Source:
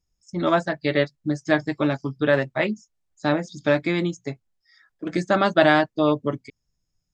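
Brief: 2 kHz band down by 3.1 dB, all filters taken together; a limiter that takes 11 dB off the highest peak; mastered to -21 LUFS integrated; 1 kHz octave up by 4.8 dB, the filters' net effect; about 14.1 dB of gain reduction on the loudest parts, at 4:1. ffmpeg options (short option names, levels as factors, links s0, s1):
-af "equalizer=f=1000:t=o:g=8.5,equalizer=f=2000:t=o:g=-7.5,acompressor=threshold=0.0447:ratio=4,volume=5.96,alimiter=limit=0.335:level=0:latency=1"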